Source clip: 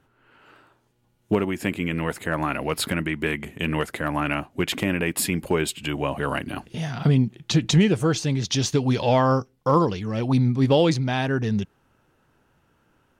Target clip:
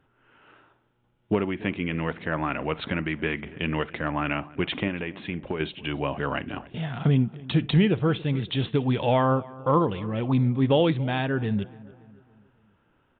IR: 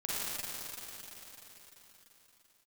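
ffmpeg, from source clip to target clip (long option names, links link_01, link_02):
-filter_complex "[0:a]asettb=1/sr,asplit=3[link_01][link_02][link_03];[link_01]atrim=end=4.874[link_04];[link_02]atrim=start=4.87:end=5.6,asetpts=PTS-STARTPTS,afade=type=in:duration=0.004:curve=qsin,afade=type=out:start_time=0.726:duration=0.004:curve=qsin,acompressor=threshold=-24dB:ratio=6[link_05];[link_03]atrim=start=5.596[link_06];[link_04][link_05]acrossfade=duration=0.004:curve1=hsin:curve2=qsin[link_07];[link_07][link_06]acrossfade=duration=0.004:curve1=qsin:curve2=hsin,asplit=2[link_08][link_09];[link_09]adelay=281,lowpass=frequency=2000:poles=1,volume=-20dB,asplit=2[link_10][link_11];[link_11]adelay=281,lowpass=frequency=2000:poles=1,volume=0.51,asplit=2[link_12][link_13];[link_13]adelay=281,lowpass=frequency=2000:poles=1,volume=0.51,asplit=2[link_14][link_15];[link_15]adelay=281,lowpass=frequency=2000:poles=1,volume=0.51[link_16];[link_08][link_10][link_12][link_14][link_16]amix=inputs=5:normalize=0,asplit=2[link_17][link_18];[1:a]atrim=start_sample=2205,atrim=end_sample=3087[link_19];[link_18][link_19]afir=irnorm=-1:irlink=0,volume=-19dB[link_20];[link_17][link_20]amix=inputs=2:normalize=0,aresample=8000,aresample=44100,volume=-3dB"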